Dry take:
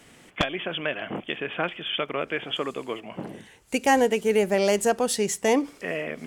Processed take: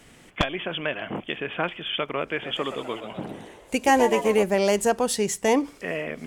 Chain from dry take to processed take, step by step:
low-shelf EQ 73 Hz +10 dB
0:02.29–0:04.43: echo with shifted repeats 126 ms, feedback 58%, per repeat +86 Hz, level −10 dB
dynamic equaliser 970 Hz, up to +4 dB, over −44 dBFS, Q 4.4

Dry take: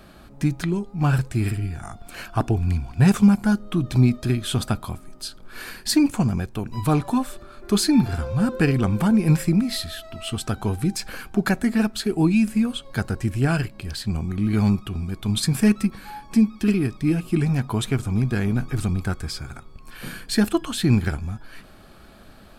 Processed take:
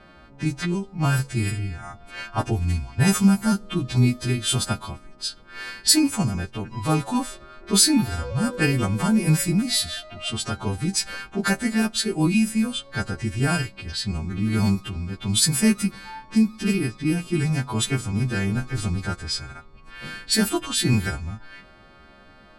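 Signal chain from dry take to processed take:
every partial snapped to a pitch grid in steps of 2 semitones
low-pass that shuts in the quiet parts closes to 2,400 Hz, open at −15.5 dBFS
level −1 dB

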